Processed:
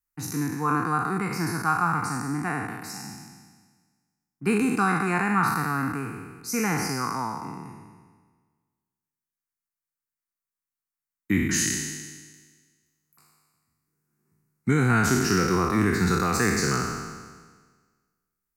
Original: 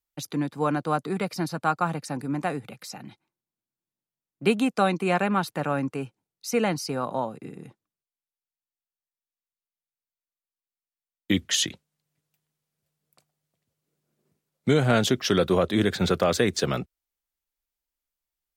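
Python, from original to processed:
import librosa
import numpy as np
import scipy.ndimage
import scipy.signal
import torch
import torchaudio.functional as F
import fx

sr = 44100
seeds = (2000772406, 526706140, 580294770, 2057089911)

y = fx.spec_trails(x, sr, decay_s=1.49)
y = fx.fixed_phaser(y, sr, hz=1400.0, stages=4)
y = y * 10.0 ** (1.0 / 20.0)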